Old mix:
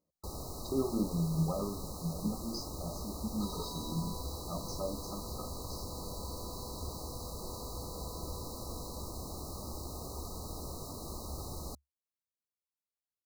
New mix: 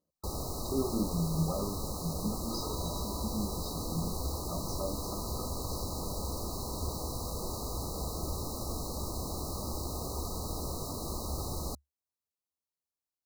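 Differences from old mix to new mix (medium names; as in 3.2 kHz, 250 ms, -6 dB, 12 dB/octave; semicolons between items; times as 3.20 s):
first sound +5.5 dB; second sound: entry -0.90 s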